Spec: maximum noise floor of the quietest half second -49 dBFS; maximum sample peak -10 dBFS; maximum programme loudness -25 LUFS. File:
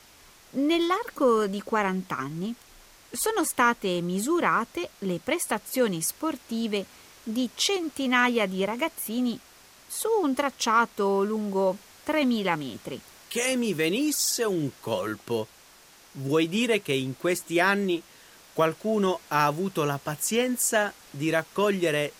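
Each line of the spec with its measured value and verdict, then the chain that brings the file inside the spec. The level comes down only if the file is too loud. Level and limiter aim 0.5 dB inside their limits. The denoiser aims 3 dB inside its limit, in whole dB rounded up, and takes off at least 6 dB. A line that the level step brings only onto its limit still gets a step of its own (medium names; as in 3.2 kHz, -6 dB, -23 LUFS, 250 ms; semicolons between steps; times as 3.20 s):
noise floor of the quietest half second -54 dBFS: pass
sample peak -9.0 dBFS: fail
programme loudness -26.5 LUFS: pass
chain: peak limiter -10.5 dBFS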